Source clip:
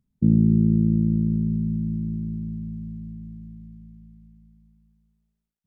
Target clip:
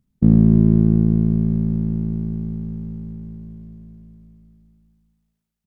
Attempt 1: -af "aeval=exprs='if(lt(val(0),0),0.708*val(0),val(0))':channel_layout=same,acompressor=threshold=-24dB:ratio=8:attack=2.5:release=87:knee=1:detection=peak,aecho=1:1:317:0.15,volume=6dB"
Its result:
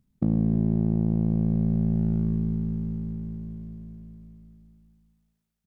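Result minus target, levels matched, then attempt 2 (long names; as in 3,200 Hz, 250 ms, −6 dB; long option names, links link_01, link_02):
downward compressor: peak gain reduction +13 dB
-af "aeval=exprs='if(lt(val(0),0),0.708*val(0),val(0))':channel_layout=same,aecho=1:1:317:0.15,volume=6dB"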